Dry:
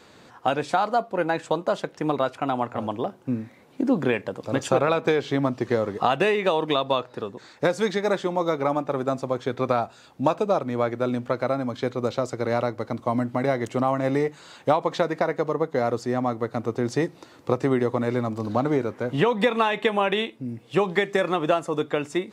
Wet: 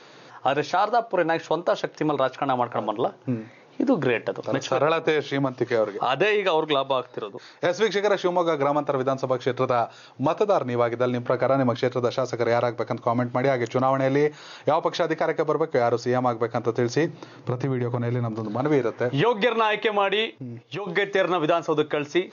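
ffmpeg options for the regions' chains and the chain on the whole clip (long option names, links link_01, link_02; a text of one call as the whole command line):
ffmpeg -i in.wav -filter_complex "[0:a]asettb=1/sr,asplit=3[link_01][link_02][link_03];[link_01]atrim=end=4.664[link_04];[link_02]atrim=start=4.66:end=7.66,asetpts=PTS-STARTPTS,afade=type=in:duration=0.004:curve=qsin,afade=type=out:start_time=2.996:duration=0.004:curve=qsin,highpass=frequency=110:width=0.5412,highpass=frequency=110:width=1.3066,acrossover=split=1200[link_05][link_06];[link_05]aeval=exprs='val(0)*(1-0.5/2+0.5/2*cos(2*PI*5.2*n/s))':channel_layout=same[link_07];[link_06]aeval=exprs='val(0)*(1-0.5/2-0.5/2*cos(2*PI*5.2*n/s))':channel_layout=same[link_08];[link_07][link_08]amix=inputs=2:normalize=0[link_09];[link_03]atrim=start=7.656[link_10];[link_04][link_09]acrossfade=duration=0.004:curve1=hsin:curve2=qsin[link_11];[link_11][link_10]acrossfade=duration=0.004:curve1=qsin:curve2=hsin,asettb=1/sr,asplit=3[link_12][link_13][link_14];[link_12]atrim=end=11.254[link_15];[link_13]atrim=start=11.25:end=11.77,asetpts=PTS-STARTPTS,afade=type=in:duration=0.004:curve=qsin,afade=type=out:start_time=0.516:duration=0.004:curve=qsin,lowpass=frequency=2500:poles=1,acontrast=73[link_16];[link_14]atrim=start=11.766[link_17];[link_15][link_16]acrossfade=duration=0.004:curve1=hsin:curve2=qsin[link_18];[link_18][link_17]acrossfade=duration=0.004:curve1=qsin:curve2=hsin,asettb=1/sr,asplit=3[link_19][link_20][link_21];[link_19]atrim=end=17.054[link_22];[link_20]atrim=start=17.05:end=18.6,asetpts=PTS-STARTPTS,afade=type=in:duration=0.004:curve=qsin,afade=type=out:start_time=1.546:duration=0.004:curve=qsin,bass=frequency=250:gain=11,treble=frequency=4000:gain=-3,acompressor=threshold=-22dB:ratio=10:attack=3.2:release=140:knee=1:detection=peak[link_23];[link_21]atrim=start=18.596[link_24];[link_22][link_23]acrossfade=duration=0.004:curve1=hsin:curve2=qsin[link_25];[link_25][link_24]acrossfade=duration=0.004:curve1=qsin:curve2=hsin,asettb=1/sr,asplit=3[link_26][link_27][link_28];[link_26]atrim=end=20.384[link_29];[link_27]atrim=start=20.38:end=20.87,asetpts=PTS-STARTPTS,afade=type=in:duration=0.004:curve=qsin,afade=type=out:start_time=0.486:duration=0.004:curve=qsin,agate=range=-10dB:threshold=-50dB:ratio=16:release=100:detection=peak,acompressor=threshold=-31dB:ratio=6:attack=3.2:release=140:knee=1:detection=peak[link_30];[link_28]atrim=start=20.866[link_31];[link_29][link_30]acrossfade=duration=0.004:curve1=hsin:curve2=qsin[link_32];[link_32][link_31]acrossfade=duration=0.004:curve1=qsin:curve2=hsin,afftfilt=real='re*between(b*sr/4096,110,6800)':imag='im*between(b*sr/4096,110,6800)':win_size=4096:overlap=0.75,equalizer=frequency=210:width=2.2:gain=-9,alimiter=limit=-15dB:level=0:latency=1:release=92,volume=4.5dB" out.wav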